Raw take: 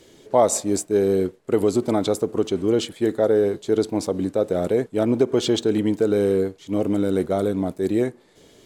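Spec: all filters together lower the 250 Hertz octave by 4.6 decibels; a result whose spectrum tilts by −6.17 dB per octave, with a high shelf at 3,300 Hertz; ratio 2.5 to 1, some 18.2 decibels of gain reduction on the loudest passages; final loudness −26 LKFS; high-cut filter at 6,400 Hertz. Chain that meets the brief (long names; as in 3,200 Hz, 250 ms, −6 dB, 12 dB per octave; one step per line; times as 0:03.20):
low-pass filter 6,400 Hz
parametric band 250 Hz −6.5 dB
high-shelf EQ 3,300 Hz −7.5 dB
downward compressor 2.5 to 1, threshold −42 dBFS
level +13 dB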